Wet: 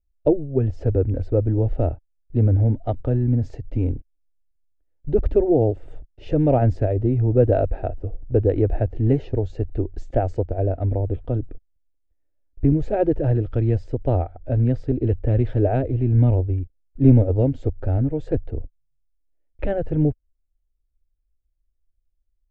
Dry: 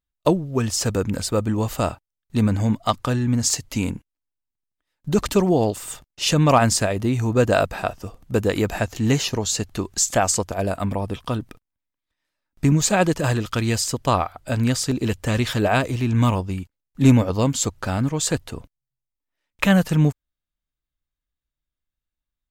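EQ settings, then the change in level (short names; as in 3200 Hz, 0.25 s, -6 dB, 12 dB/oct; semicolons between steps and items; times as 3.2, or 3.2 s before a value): LPF 1300 Hz 12 dB/oct; tilt -3.5 dB/oct; fixed phaser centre 450 Hz, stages 4; -1.5 dB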